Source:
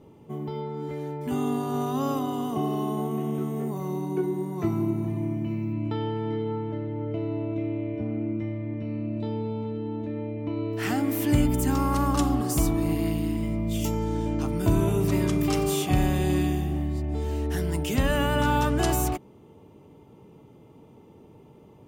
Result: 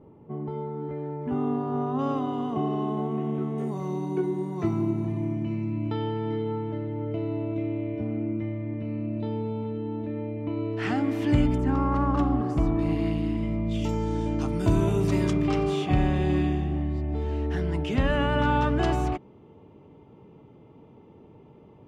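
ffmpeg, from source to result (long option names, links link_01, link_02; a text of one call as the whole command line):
ffmpeg -i in.wav -af "asetnsamples=nb_out_samples=441:pad=0,asendcmd='1.99 lowpass f 2700;3.58 lowpass f 6300;8.21 lowpass f 3600;11.58 lowpass f 1800;12.79 lowpass f 3600;13.89 lowpass f 7100;15.33 lowpass f 3100',lowpass=1500" out.wav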